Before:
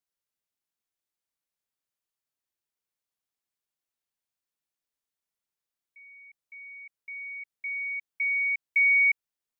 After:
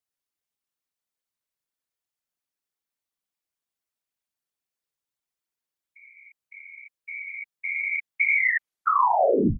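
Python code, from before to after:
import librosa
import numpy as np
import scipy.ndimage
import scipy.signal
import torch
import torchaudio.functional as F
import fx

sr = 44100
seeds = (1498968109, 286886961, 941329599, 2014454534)

y = fx.tape_stop_end(x, sr, length_s=1.24)
y = fx.dynamic_eq(y, sr, hz=2100.0, q=2.5, threshold_db=-40.0, ratio=4.0, max_db=6)
y = fx.whisperise(y, sr, seeds[0])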